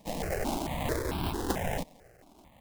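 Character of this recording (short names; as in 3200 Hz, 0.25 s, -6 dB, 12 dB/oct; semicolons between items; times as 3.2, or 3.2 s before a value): aliases and images of a low sample rate 1300 Hz, jitter 20%; notches that jump at a steady rate 4.5 Hz 390–1900 Hz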